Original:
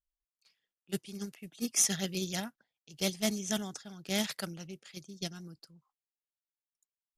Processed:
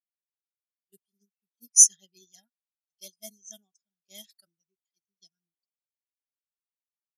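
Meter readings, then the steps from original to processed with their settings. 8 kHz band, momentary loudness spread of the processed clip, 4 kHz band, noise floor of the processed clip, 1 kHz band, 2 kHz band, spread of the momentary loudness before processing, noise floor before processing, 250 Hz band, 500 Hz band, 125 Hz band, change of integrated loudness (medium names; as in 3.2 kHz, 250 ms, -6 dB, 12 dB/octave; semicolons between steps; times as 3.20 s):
+11.5 dB, 4 LU, -7.5 dB, under -85 dBFS, under -20 dB, under -20 dB, 18 LU, under -85 dBFS, under -25 dB, -18.5 dB, under -25 dB, +17.0 dB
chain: RIAA curve recording; spectral contrast expander 2.5:1; trim +1 dB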